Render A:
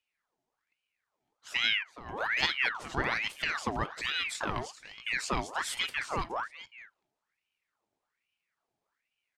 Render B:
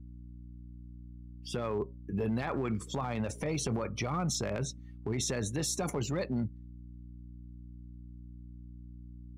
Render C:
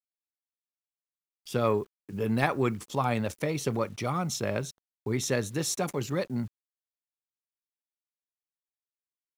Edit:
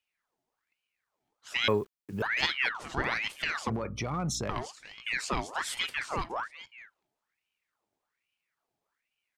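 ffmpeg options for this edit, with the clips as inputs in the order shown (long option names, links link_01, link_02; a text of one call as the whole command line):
ffmpeg -i take0.wav -i take1.wav -i take2.wav -filter_complex "[0:a]asplit=3[link_01][link_02][link_03];[link_01]atrim=end=1.682[link_04];[2:a]atrim=start=1.678:end=2.222[link_05];[link_02]atrim=start=2.218:end=3.702[link_06];[1:a]atrim=start=3.698:end=4.492[link_07];[link_03]atrim=start=4.488[link_08];[link_04][link_05]acrossfade=duration=0.004:curve1=hsin:curve2=hsin[link_09];[link_09][link_06]acrossfade=duration=0.004:curve1=hsin:curve2=hsin[link_10];[link_10][link_07]acrossfade=duration=0.004:curve1=hsin:curve2=hsin[link_11];[link_11][link_08]acrossfade=duration=0.004:curve1=hsin:curve2=hsin" out.wav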